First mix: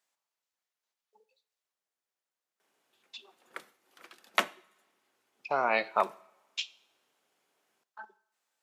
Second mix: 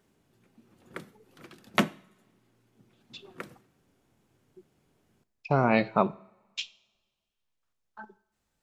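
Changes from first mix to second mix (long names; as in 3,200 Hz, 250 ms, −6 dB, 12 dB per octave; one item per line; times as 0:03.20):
background: entry −2.60 s
master: remove high-pass filter 660 Hz 12 dB per octave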